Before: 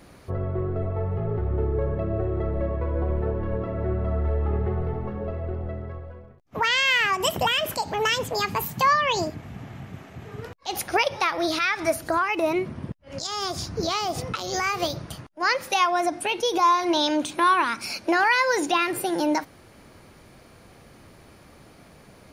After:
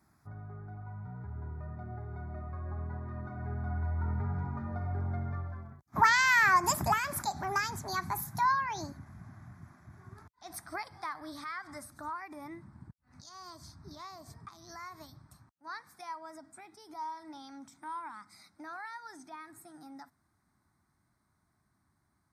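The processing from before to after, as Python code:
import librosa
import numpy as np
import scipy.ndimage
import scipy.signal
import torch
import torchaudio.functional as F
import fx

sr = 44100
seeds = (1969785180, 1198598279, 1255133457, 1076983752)

y = fx.doppler_pass(x, sr, speed_mps=35, closest_m=27.0, pass_at_s=5.93)
y = scipy.signal.sosfilt(scipy.signal.butter(2, 59.0, 'highpass', fs=sr, output='sos'), y)
y = fx.fixed_phaser(y, sr, hz=1200.0, stages=4)
y = y * librosa.db_to_amplitude(3.0)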